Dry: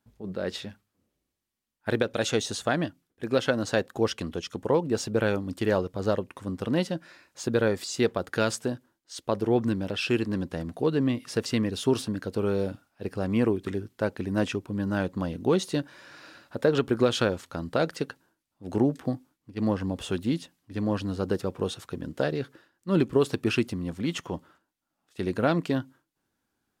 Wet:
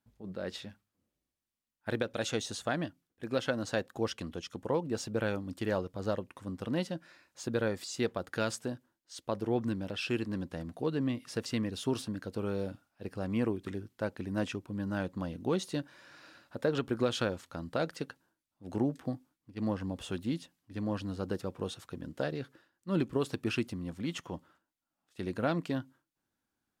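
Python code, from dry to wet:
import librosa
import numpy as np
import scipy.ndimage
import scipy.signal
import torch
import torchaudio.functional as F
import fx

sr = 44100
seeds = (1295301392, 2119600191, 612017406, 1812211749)

y = fx.peak_eq(x, sr, hz=410.0, db=-4.0, octaves=0.25)
y = y * 10.0 ** (-6.5 / 20.0)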